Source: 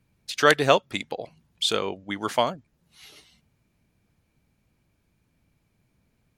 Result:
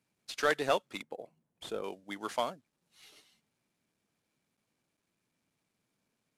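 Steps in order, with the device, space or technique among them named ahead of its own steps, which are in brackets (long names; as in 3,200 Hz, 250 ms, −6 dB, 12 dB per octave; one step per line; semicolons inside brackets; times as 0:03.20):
early wireless headset (high-pass filter 210 Hz 12 dB per octave; variable-slope delta modulation 64 kbit/s)
0:01.02–0:01.84: drawn EQ curve 490 Hz 0 dB, 4,700 Hz −15 dB, 9,200 Hz −9 dB
level −9 dB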